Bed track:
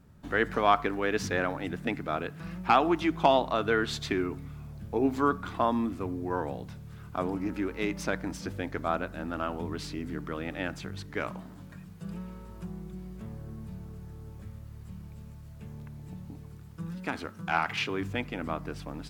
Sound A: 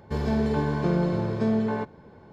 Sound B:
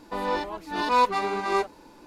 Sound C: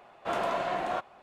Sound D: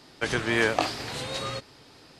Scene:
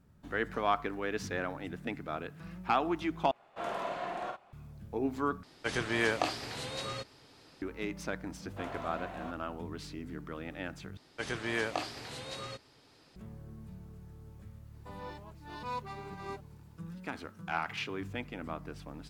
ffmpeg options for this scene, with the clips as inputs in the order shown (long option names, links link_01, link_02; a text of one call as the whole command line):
ffmpeg -i bed.wav -i cue0.wav -i cue1.wav -i cue2.wav -i cue3.wav -filter_complex "[3:a]asplit=2[link_01][link_02];[4:a]asplit=2[link_03][link_04];[0:a]volume=-6.5dB[link_05];[link_01]asplit=2[link_06][link_07];[link_07]adelay=49,volume=-4dB[link_08];[link_06][link_08]amix=inputs=2:normalize=0[link_09];[link_05]asplit=4[link_10][link_11][link_12][link_13];[link_10]atrim=end=3.314[link_14];[link_09]atrim=end=1.22,asetpts=PTS-STARTPTS,volume=-8dB[link_15];[link_11]atrim=start=4.526:end=5.434[link_16];[link_03]atrim=end=2.19,asetpts=PTS-STARTPTS,volume=-6dB[link_17];[link_12]atrim=start=7.616:end=10.974[link_18];[link_04]atrim=end=2.19,asetpts=PTS-STARTPTS,volume=-9.5dB[link_19];[link_13]atrim=start=13.156[link_20];[link_02]atrim=end=1.22,asetpts=PTS-STARTPTS,volume=-12.5dB,afade=type=in:duration=0.004:curve=hsin,afade=type=out:start_time=1.216:duration=0.004:curve=hsin,adelay=8310[link_21];[2:a]atrim=end=2.06,asetpts=PTS-STARTPTS,volume=-18dB,afade=type=in:duration=0.004:curve=hsin,afade=type=out:start_time=2.056:duration=0.004:curve=hsin,adelay=14740[link_22];[link_14][link_15]acrossfade=duration=0.004:curve1=hsin:curve2=hsin[link_23];[link_23][link_16]acrossfade=duration=0.004:curve1=hsin:curve2=hsin[link_24];[link_24][link_17]acrossfade=duration=0.004:curve1=hsin:curve2=hsin[link_25];[link_25][link_18]acrossfade=duration=0.004:curve1=hsin:curve2=hsin[link_26];[link_26][link_19]acrossfade=duration=0.004:curve1=hsin:curve2=hsin[link_27];[link_27][link_20]acrossfade=duration=0.004:curve1=hsin:curve2=hsin[link_28];[link_28][link_21][link_22]amix=inputs=3:normalize=0" out.wav